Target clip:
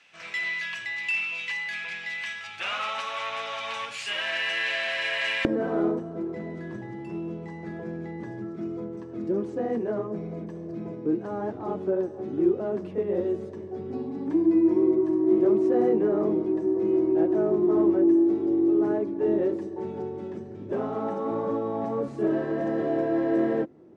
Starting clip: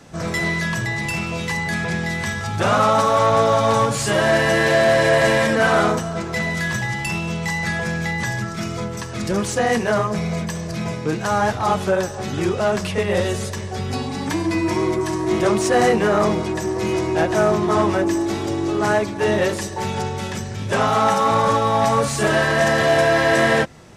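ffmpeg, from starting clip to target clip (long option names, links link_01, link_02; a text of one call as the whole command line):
ffmpeg -i in.wav -af "asetnsamples=nb_out_samples=441:pad=0,asendcmd='5.45 bandpass f 330',bandpass=frequency=2600:width_type=q:width=3.7:csg=0,volume=2dB" out.wav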